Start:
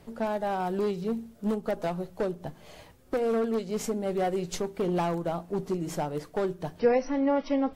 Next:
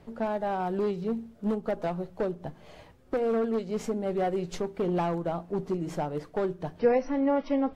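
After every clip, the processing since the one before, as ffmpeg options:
-af "lowpass=f=2.9k:p=1"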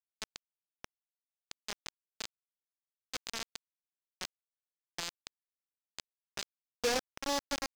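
-af "lowshelf=f=250:g=-9,aresample=11025,acrusher=bits=3:mix=0:aa=0.000001,aresample=44100,asoftclip=type=hard:threshold=-30dB,volume=4dB"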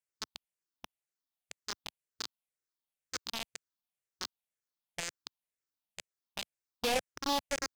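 -af "afftfilt=real='re*pow(10,9/40*sin(2*PI*(0.5*log(max(b,1)*sr/1024/100)/log(2)-(-2)*(pts-256)/sr)))':imag='im*pow(10,9/40*sin(2*PI*(0.5*log(max(b,1)*sr/1024/100)/log(2)-(-2)*(pts-256)/sr)))':win_size=1024:overlap=0.75"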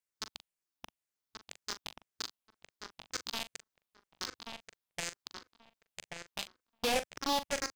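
-filter_complex "[0:a]asplit=2[a][b];[b]adelay=41,volume=-12dB[c];[a][c]amix=inputs=2:normalize=0,asplit=2[d][e];[e]adelay=1132,lowpass=f=2.6k:p=1,volume=-4dB,asplit=2[f][g];[g]adelay=1132,lowpass=f=2.6k:p=1,volume=0.16,asplit=2[h][i];[i]adelay=1132,lowpass=f=2.6k:p=1,volume=0.16[j];[d][f][h][j]amix=inputs=4:normalize=0"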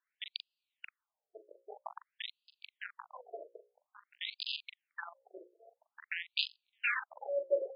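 -af "asoftclip=type=tanh:threshold=-28dB,bandreject=f=60:t=h:w=6,bandreject=f=120:t=h:w=6,bandreject=f=180:t=h:w=6,bandreject=f=240:t=h:w=6,bandreject=f=300:t=h:w=6,bandreject=f=360:t=h:w=6,bandreject=f=420:t=h:w=6,bandreject=f=480:t=h:w=6,bandreject=f=540:t=h:w=6,bandreject=f=600:t=h:w=6,afftfilt=real='re*between(b*sr/1024,450*pow(3600/450,0.5+0.5*sin(2*PI*0.5*pts/sr))/1.41,450*pow(3600/450,0.5+0.5*sin(2*PI*0.5*pts/sr))*1.41)':imag='im*between(b*sr/1024,450*pow(3600/450,0.5+0.5*sin(2*PI*0.5*pts/sr))/1.41,450*pow(3600/450,0.5+0.5*sin(2*PI*0.5*pts/sr))*1.41)':win_size=1024:overlap=0.75,volume=12dB"

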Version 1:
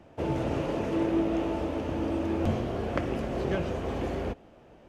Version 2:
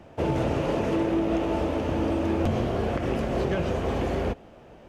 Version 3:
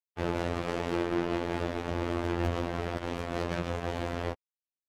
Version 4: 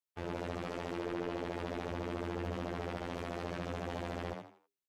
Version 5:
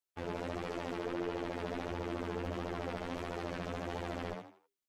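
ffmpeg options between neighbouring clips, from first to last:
-af "equalizer=f=300:t=o:w=0.41:g=-2.5,alimiter=limit=-21.5dB:level=0:latency=1:release=77,volume=5.5dB"
-af "acrusher=bits=3:mix=0:aa=0.5,afftfilt=real='hypot(re,im)*cos(PI*b)':imag='0':win_size=2048:overlap=0.75,volume=-3.5dB"
-filter_complex "[0:a]alimiter=limit=-22.5dB:level=0:latency=1,asplit=2[a][b];[b]asplit=4[c][d][e][f];[c]adelay=81,afreqshift=100,volume=-5dB[g];[d]adelay=162,afreqshift=200,volume=-14.9dB[h];[e]adelay=243,afreqshift=300,volume=-24.8dB[i];[f]adelay=324,afreqshift=400,volume=-34.7dB[j];[g][h][i][j]amix=inputs=4:normalize=0[k];[a][k]amix=inputs=2:normalize=0,volume=-1.5dB"
-af "flanger=delay=2:depth=2.9:regen=55:speed=1.5:shape=triangular,volume=4.5dB"

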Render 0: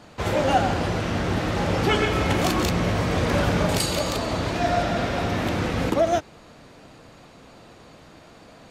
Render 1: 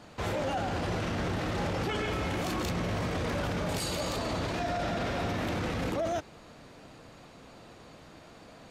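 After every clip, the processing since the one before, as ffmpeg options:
-af "alimiter=limit=-20.5dB:level=0:latency=1:release=14,volume=-3.5dB"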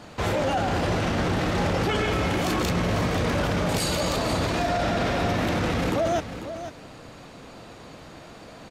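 -af "aecho=1:1:495:0.282,volume=7dB"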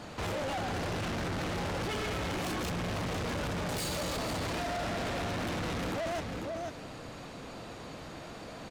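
-af "asoftclip=type=tanh:threshold=-32.5dB"

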